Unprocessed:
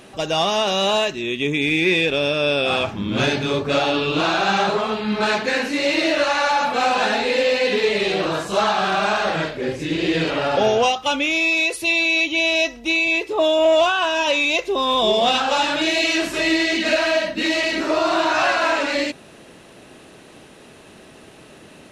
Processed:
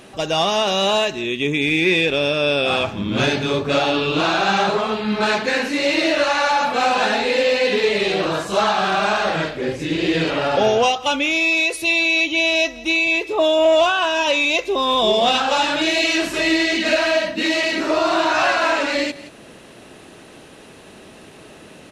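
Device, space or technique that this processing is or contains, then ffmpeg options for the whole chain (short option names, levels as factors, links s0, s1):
ducked delay: -filter_complex "[0:a]asettb=1/sr,asplit=3[s0][s1][s2];[s0]atrim=end=17.324[s3];[s1]atrim=start=17.32:end=17.82,asetpts=PTS-STARTPTS,afade=t=in:d=0.004:c=qsin,afade=t=out:st=0.496:d=0.004:c=qsin,highpass=81[s4];[s2]atrim=start=17.816[s5];[s3][s4]acrossfade=d=0.004:c1=hsin:c2=qsin[s6];[s6][s5]acrossfade=d=0.004:c1=qsin:c2=hsin,asplit=3[s7][s8][s9];[s8]adelay=172,volume=0.562[s10];[s9]apad=whole_len=974244[s11];[s10][s11]sidechaincompress=threshold=0.0158:ratio=8:attack=5.1:release=332[s12];[s7][s12]amix=inputs=2:normalize=0,volume=1.12"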